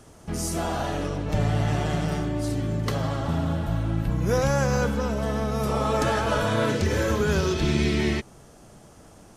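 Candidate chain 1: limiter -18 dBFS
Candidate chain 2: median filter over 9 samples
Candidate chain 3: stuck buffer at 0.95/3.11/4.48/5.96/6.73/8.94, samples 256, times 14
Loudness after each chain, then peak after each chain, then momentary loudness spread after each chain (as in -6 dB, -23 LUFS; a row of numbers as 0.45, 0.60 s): -27.5, -25.5, -25.5 LUFS; -18.0, -11.5, -11.0 dBFS; 2, 5, 5 LU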